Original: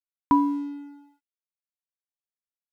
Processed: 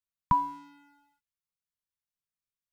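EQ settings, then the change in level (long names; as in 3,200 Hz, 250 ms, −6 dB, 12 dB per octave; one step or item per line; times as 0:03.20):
Chebyshev band-stop filter 180–1,000 Hz, order 3
low-shelf EQ 460 Hz +10 dB
−2.0 dB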